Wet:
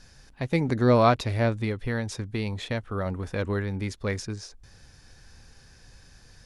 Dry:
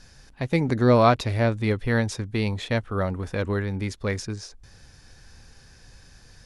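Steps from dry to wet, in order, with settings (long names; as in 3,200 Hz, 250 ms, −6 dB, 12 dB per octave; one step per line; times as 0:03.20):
0:01.64–0:03.06: downward compressor 3 to 1, threshold −24 dBFS, peak gain reduction 5 dB
level −2 dB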